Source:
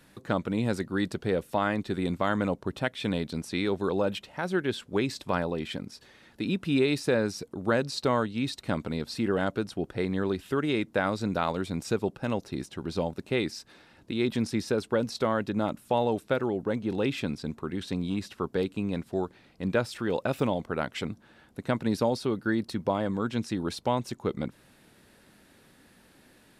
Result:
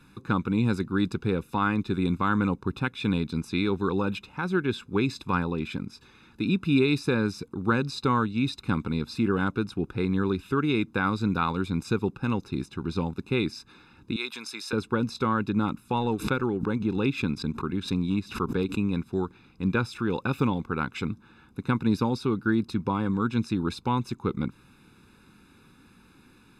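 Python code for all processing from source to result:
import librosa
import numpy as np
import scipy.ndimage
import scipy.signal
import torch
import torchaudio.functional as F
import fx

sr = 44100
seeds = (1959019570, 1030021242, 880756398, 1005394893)

y = fx.chain(x, sr, fx.highpass(hz=810.0, slope=12),
    fx.high_shelf(hz=3700.0, db=6.0), at=(14.16, 14.73))
y = fx.chain(y, sr, fx.transient(attack_db=0, sustain_db=-6),
    fx.pre_swell(db_per_s=130.0), at=(15.95, 18.94))
y = fx.high_shelf(y, sr, hz=5400.0, db=-9.0)
y = y + 0.92 * np.pad(y, (int(0.8 * sr / 1000.0), 0))[:len(y)]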